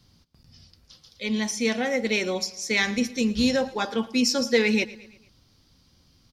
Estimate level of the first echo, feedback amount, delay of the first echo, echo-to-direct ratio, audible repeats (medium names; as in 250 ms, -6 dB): -19.5 dB, 52%, 113 ms, -18.0 dB, 3